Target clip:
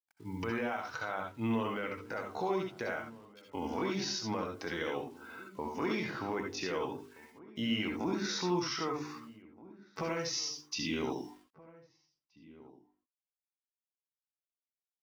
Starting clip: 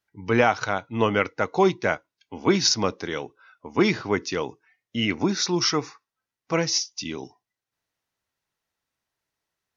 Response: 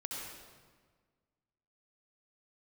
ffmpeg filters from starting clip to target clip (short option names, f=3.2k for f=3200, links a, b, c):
-filter_complex "[0:a]bass=f=250:g=-4,treble=f=4k:g=-4,bandreject=f=50:t=h:w=6,bandreject=f=100:t=h:w=6,bandreject=f=150:t=h:w=6,bandreject=f=200:t=h:w=6,bandreject=f=250:t=h:w=6,bandreject=f=300:t=h:w=6,bandreject=f=350:t=h:w=6,bandreject=f=400:t=h:w=6,bandreject=f=450:t=h:w=6,acompressor=threshold=-31dB:ratio=10,alimiter=level_in=3.5dB:limit=-24dB:level=0:latency=1:release=21,volume=-3.5dB,acrusher=bits=10:mix=0:aa=0.000001,atempo=0.65,asplit=2[a][b];[b]adelay=1574,volume=-19dB,highshelf=f=4k:g=-35.4[c];[a][c]amix=inputs=2:normalize=0[d];[1:a]atrim=start_sample=2205,atrim=end_sample=3969[e];[d][e]afir=irnorm=-1:irlink=0,adynamicequalizer=threshold=0.00158:dfrequency=2900:dqfactor=0.7:tfrequency=2900:tqfactor=0.7:attack=5:release=100:ratio=0.375:range=2.5:mode=cutabove:tftype=highshelf,volume=6.5dB"